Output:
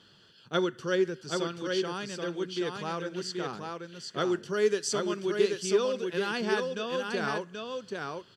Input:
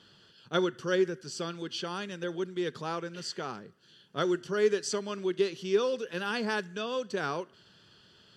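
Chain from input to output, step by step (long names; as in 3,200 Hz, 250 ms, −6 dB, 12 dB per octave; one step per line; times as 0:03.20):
0:04.50–0:05.54: high-shelf EQ 7,200 Hz +7 dB
on a send: single-tap delay 780 ms −4 dB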